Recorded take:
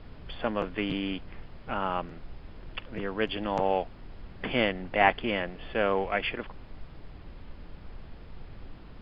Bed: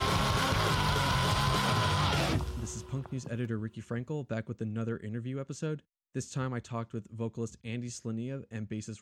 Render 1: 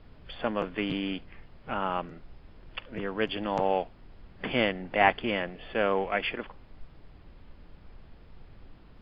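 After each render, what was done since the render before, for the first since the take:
noise reduction from a noise print 6 dB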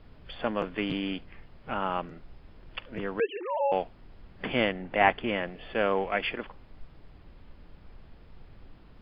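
0:03.20–0:03.72: three sine waves on the formant tracks
0:04.47–0:05.41: low-pass filter 4,500 Hz → 3,200 Hz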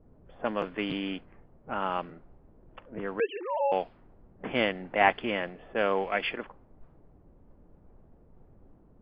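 low-pass that shuts in the quiet parts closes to 510 Hz, open at −22.5 dBFS
low-shelf EQ 120 Hz −8.5 dB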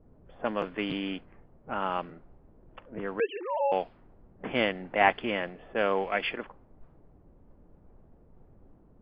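no processing that can be heard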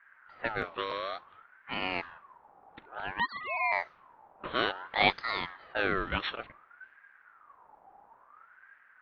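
ring modulator whose carrier an LFO sweeps 1,200 Hz, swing 35%, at 0.57 Hz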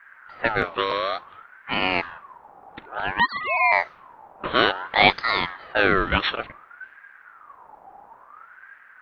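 level +10.5 dB
brickwall limiter −1 dBFS, peak gain reduction 2.5 dB

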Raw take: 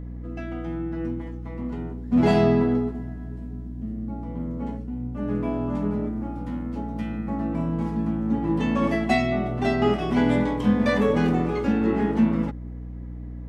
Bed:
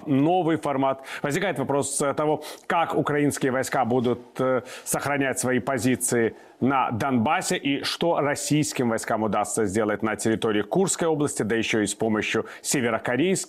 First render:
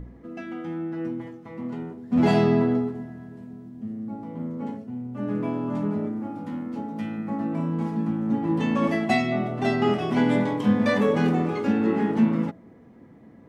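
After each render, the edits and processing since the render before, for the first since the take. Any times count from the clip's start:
hum removal 60 Hz, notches 11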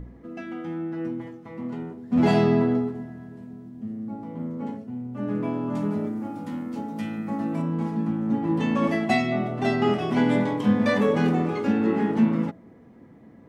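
0:05.75–0:07.62: high-shelf EQ 4,400 Hz +10.5 dB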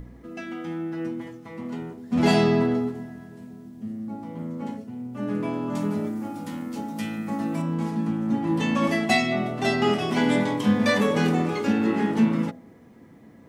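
high-shelf EQ 3,100 Hz +11.5 dB
hum removal 62.76 Hz, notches 13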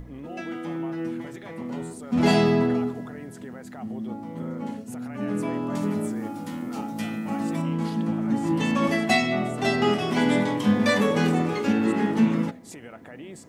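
mix in bed −19.5 dB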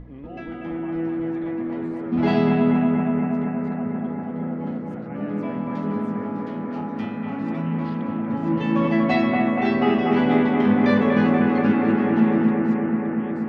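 high-frequency loss of the air 290 metres
on a send: bucket-brigade delay 239 ms, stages 4,096, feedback 81%, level −3 dB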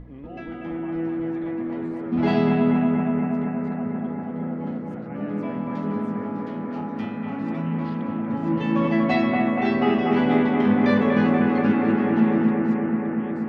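level −1 dB

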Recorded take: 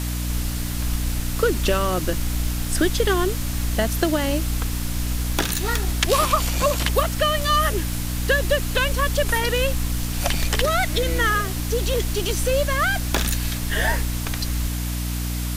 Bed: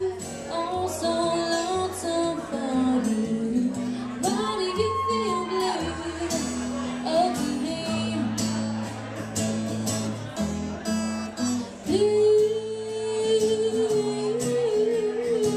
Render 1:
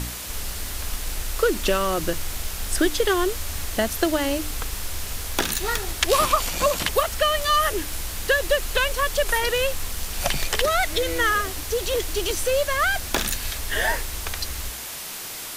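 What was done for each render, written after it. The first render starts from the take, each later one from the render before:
hum removal 60 Hz, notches 5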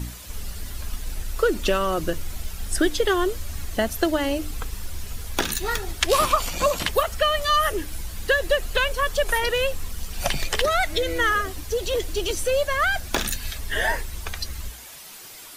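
broadband denoise 10 dB, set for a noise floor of −34 dBFS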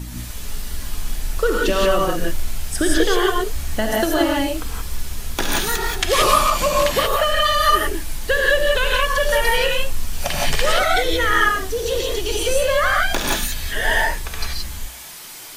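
reverb whose tail is shaped and stops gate 200 ms rising, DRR −3.5 dB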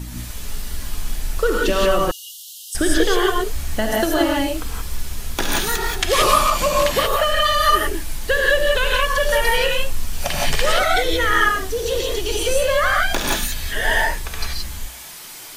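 0:02.11–0:02.75: Chebyshev high-pass filter 2,800 Hz, order 10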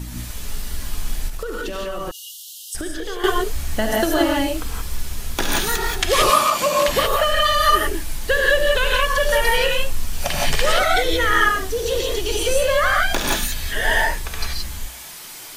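0:01.28–0:03.24: downward compressor 10 to 1, threshold −23 dBFS
0:06.30–0:06.88: high-pass filter 170 Hz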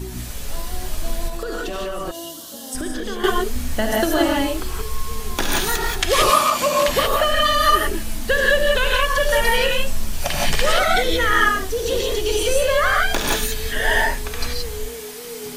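mix in bed −10.5 dB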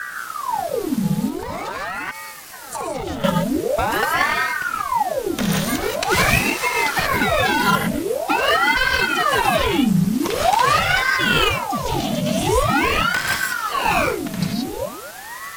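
in parallel at −8.5 dB: sample-and-hold swept by an LFO 22×, swing 100% 0.77 Hz
on the sum: ring modulator whose carrier an LFO sweeps 870 Hz, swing 80%, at 0.45 Hz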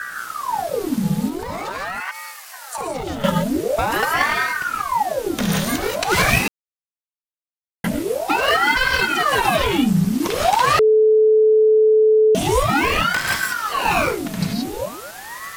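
0:02.00–0:02.78: high-pass filter 630 Hz 24 dB per octave
0:06.48–0:07.84: silence
0:10.79–0:12.35: beep over 434 Hz −10 dBFS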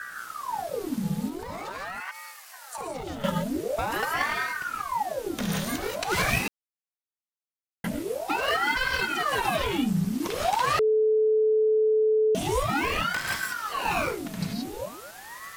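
level −8.5 dB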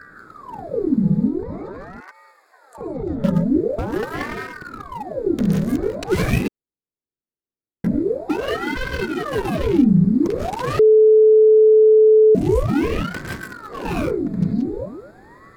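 adaptive Wiener filter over 15 samples
low shelf with overshoot 550 Hz +10.5 dB, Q 1.5

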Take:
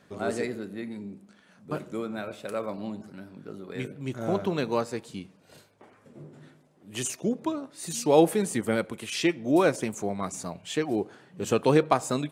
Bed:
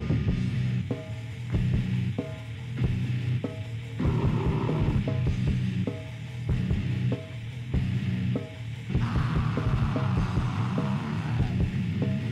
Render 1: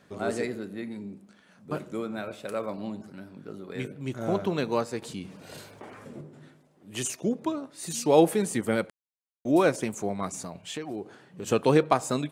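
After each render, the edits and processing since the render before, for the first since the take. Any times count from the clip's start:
0:05.02–0:06.21: envelope flattener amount 50%
0:08.90–0:09.45: silence
0:10.44–0:11.48: downward compressor 3 to 1, threshold −33 dBFS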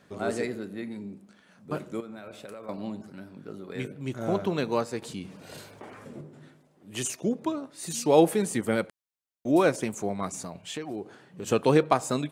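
0:02.00–0:02.69: downward compressor 16 to 1, threshold −37 dBFS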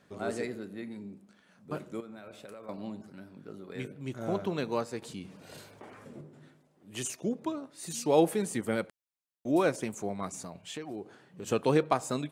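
level −4.5 dB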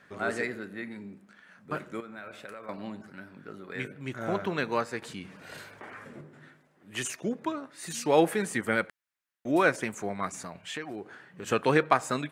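parametric band 1,700 Hz +12 dB 1.3 octaves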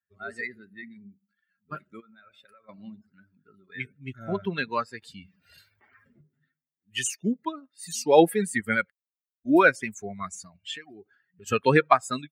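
spectral dynamics exaggerated over time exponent 2
automatic gain control gain up to 9 dB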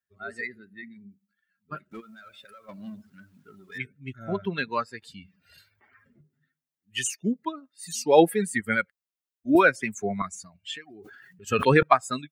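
0:01.91–0:03.78: mu-law and A-law mismatch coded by mu
0:09.55–0:10.22: multiband upward and downward compressor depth 70%
0:10.90–0:11.83: level that may fall only so fast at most 30 dB per second

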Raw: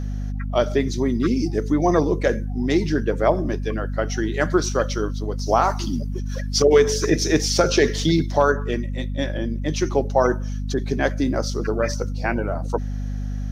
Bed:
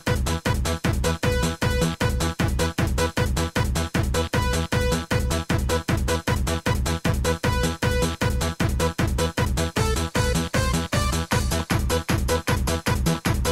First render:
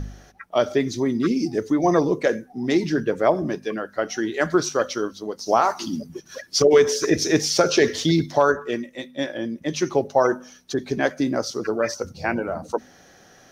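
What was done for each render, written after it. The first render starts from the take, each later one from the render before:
hum removal 50 Hz, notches 5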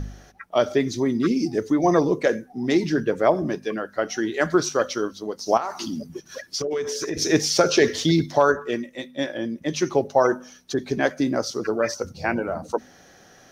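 0:05.57–0:07.17: downward compressor 4 to 1, threshold −25 dBFS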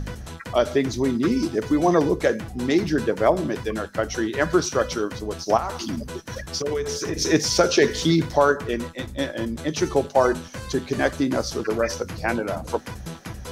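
mix in bed −13 dB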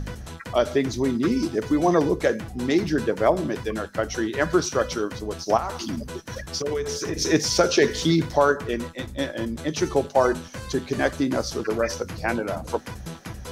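level −1 dB

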